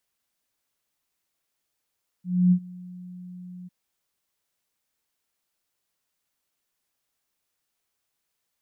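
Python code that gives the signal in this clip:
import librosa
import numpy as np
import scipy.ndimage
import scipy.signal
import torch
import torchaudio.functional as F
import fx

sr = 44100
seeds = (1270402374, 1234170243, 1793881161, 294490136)

y = fx.adsr_tone(sr, wave='sine', hz=180.0, attack_ms=275.0, decay_ms=75.0, sustain_db=-24.0, held_s=1.43, release_ms=21.0, level_db=-13.5)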